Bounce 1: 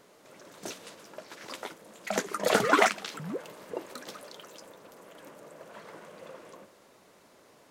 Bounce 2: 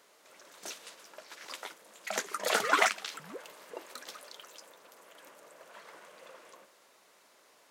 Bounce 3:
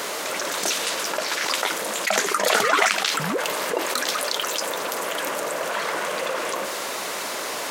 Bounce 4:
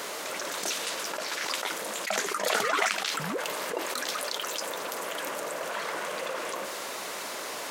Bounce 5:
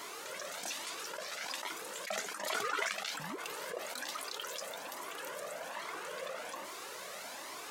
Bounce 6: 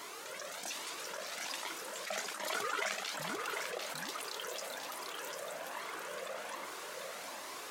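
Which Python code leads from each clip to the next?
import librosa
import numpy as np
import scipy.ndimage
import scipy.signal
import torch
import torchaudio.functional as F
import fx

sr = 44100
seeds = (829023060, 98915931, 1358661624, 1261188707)

y1 = fx.highpass(x, sr, hz=1100.0, slope=6)
y2 = fx.env_flatten(y1, sr, amount_pct=70)
y2 = y2 * librosa.db_to_amplitude(4.5)
y3 = fx.attack_slew(y2, sr, db_per_s=130.0)
y3 = y3 * librosa.db_to_amplitude(-7.0)
y4 = fx.comb_cascade(y3, sr, direction='rising', hz=1.2)
y4 = y4 * librosa.db_to_amplitude(-4.5)
y5 = y4 + 10.0 ** (-4.5 / 20.0) * np.pad(y4, (int(746 * sr / 1000.0), 0))[:len(y4)]
y5 = y5 * librosa.db_to_amplitude(-1.5)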